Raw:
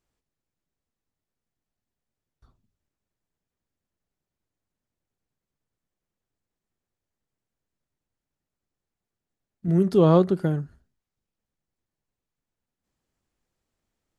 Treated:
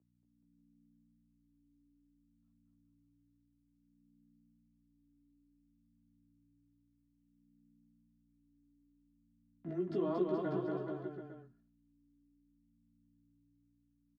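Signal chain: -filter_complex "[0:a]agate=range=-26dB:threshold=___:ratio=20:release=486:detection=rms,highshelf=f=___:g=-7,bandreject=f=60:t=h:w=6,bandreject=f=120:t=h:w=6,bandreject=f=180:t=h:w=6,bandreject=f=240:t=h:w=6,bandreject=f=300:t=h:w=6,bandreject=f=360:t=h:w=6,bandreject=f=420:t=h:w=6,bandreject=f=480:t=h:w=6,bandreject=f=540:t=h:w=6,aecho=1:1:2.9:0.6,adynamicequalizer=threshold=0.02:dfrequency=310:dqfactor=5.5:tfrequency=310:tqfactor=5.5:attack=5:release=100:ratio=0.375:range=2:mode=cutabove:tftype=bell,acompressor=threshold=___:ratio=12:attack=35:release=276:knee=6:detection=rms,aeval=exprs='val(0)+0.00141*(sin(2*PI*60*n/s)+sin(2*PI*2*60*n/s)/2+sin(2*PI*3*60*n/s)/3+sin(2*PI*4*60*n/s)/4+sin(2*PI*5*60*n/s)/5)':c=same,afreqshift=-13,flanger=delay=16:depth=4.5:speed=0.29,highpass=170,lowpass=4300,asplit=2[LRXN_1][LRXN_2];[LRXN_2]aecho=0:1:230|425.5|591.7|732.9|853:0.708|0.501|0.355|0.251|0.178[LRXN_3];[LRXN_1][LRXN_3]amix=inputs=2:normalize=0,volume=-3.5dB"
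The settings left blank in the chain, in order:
-47dB, 3400, -26dB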